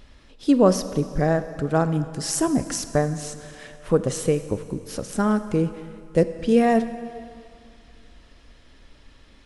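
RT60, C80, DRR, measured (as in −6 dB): 2.4 s, 12.5 dB, 11.0 dB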